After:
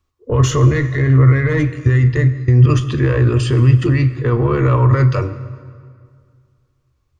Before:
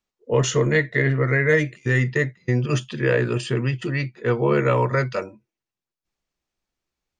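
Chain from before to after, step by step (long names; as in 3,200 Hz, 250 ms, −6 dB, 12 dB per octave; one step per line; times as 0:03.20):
one-sided soft clipper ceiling −11.5 dBFS
brickwall limiter −19 dBFS, peak gain reduction 11 dB
low shelf with overshoot 140 Hz +14 dB, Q 3
hollow resonant body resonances 290/1,100 Hz, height 14 dB, ringing for 25 ms
convolution reverb RT60 2.1 s, pre-delay 6 ms, DRR 11 dB
level +5 dB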